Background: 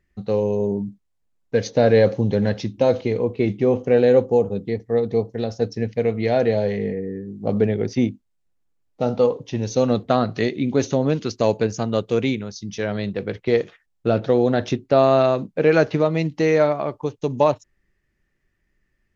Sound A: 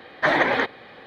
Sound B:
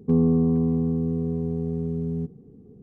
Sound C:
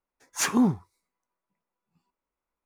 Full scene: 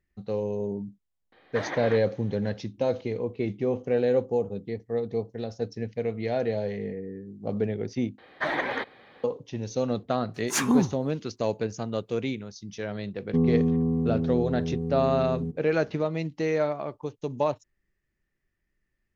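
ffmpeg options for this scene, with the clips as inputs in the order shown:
-filter_complex "[1:a]asplit=2[a][b];[0:a]volume=-8.5dB,asplit=2[c][d];[c]atrim=end=8.184[e];[b]atrim=end=1.06,asetpts=PTS-STARTPTS,volume=-8.5dB[f];[d]atrim=start=9.236[g];[a]atrim=end=1.06,asetpts=PTS-STARTPTS,volume=-14.5dB,afade=t=in:d=0.004:c=hsin,afade=t=out:st=1.056:d=0.004:c=hsin,adelay=1320[h];[3:a]atrim=end=2.65,asetpts=PTS-STARTPTS,volume=-0.5dB,afade=t=in:d=0.004:c=hsin,afade=t=out:st=2.646:d=0.004:c=hsin,adelay=10140[i];[2:a]atrim=end=2.82,asetpts=PTS-STARTPTS,volume=-3dB,afade=t=in:d=0.004:c=hsin,afade=t=out:st=2.816:d=0.004:c=hsin,adelay=13250[j];[e][f]acrossfade=d=0.004:c1=hsin:c2=hsin[k];[k][g]acrossfade=d=0.004:c1=hsin:c2=hsin[l];[l][h][i][j]amix=inputs=4:normalize=0"

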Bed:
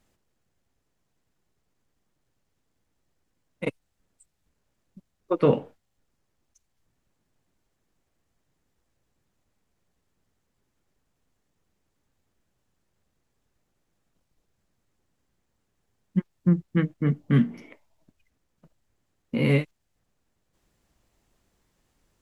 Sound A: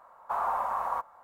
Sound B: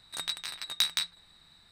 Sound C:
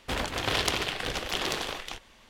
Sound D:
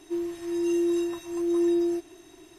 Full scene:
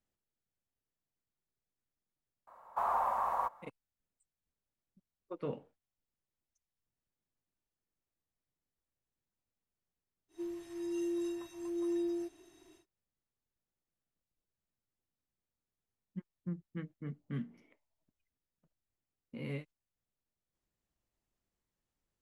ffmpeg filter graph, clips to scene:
-filter_complex "[0:a]volume=-19dB[a];[1:a]equalizer=f=1.4k:t=o:w=0.35:g=-4,atrim=end=1.23,asetpts=PTS-STARTPTS,volume=-2dB,afade=t=in:d=0.004:c=hsin,afade=t=out:st=1.226:d=0.004:c=hsin,adelay=2470[b];[4:a]atrim=end=2.58,asetpts=PTS-STARTPTS,volume=-11dB,afade=t=in:d=0.1,afade=t=out:st=2.48:d=0.1,adelay=10280[c];[a][b][c]amix=inputs=3:normalize=0"

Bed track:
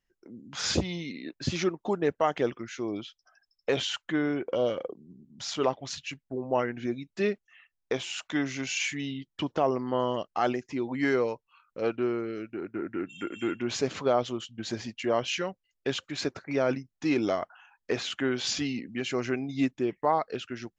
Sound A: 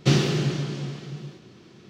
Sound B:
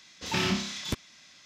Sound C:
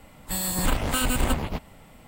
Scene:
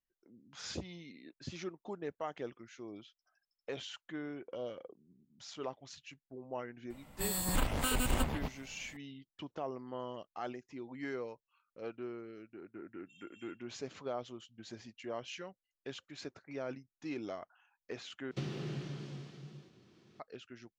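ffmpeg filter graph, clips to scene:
-filter_complex "[0:a]volume=-14.5dB[a];[1:a]acrossover=split=1300|3600[b][c][d];[b]acompressor=threshold=-22dB:ratio=4[e];[c]acompressor=threshold=-39dB:ratio=4[f];[d]acompressor=threshold=-47dB:ratio=4[g];[e][f][g]amix=inputs=3:normalize=0[h];[a]asplit=2[i][j];[i]atrim=end=18.314[k];[h]atrim=end=1.89,asetpts=PTS-STARTPTS,volume=-14dB[l];[j]atrim=start=20.196[m];[3:a]atrim=end=2.07,asetpts=PTS-STARTPTS,volume=-8dB,afade=t=in:d=0.004:c=hsin,afade=t=out:st=2.066:d=0.004:c=hsin,adelay=304290S[n];[k][l]acrossfade=d=0.004:c1=hsin:c2=hsin[o];[o][m]acrossfade=d=0.004:c1=hsin:c2=hsin[p];[p][n]amix=inputs=2:normalize=0"

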